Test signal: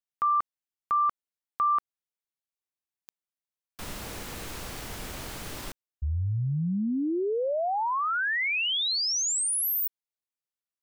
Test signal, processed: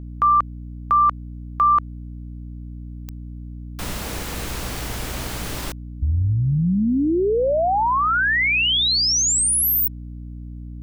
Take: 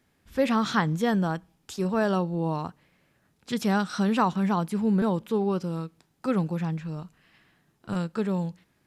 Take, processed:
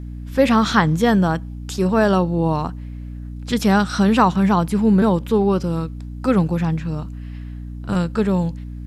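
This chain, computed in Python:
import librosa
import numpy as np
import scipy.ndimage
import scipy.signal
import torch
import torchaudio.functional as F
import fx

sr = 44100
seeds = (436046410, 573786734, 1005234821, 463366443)

y = fx.add_hum(x, sr, base_hz=60, snr_db=12)
y = y * librosa.db_to_amplitude(8.5)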